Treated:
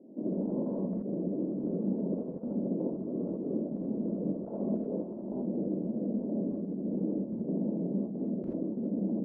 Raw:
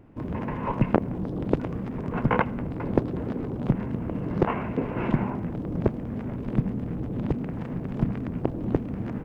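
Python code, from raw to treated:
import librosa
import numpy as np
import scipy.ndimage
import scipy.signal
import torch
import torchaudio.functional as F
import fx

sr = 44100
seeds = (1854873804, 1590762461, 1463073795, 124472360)

y = scipy.signal.sosfilt(scipy.signal.ellip(3, 1.0, 50, [200.0, 610.0], 'bandpass', fs=sr, output='sos'), x)
y = fx.over_compress(y, sr, threshold_db=-35.0, ratio=-0.5)
y = fx.rev_gated(y, sr, seeds[0], gate_ms=100, shape='rising', drr_db=-4.0)
y = y * 10.0 ** (-3.0 / 20.0)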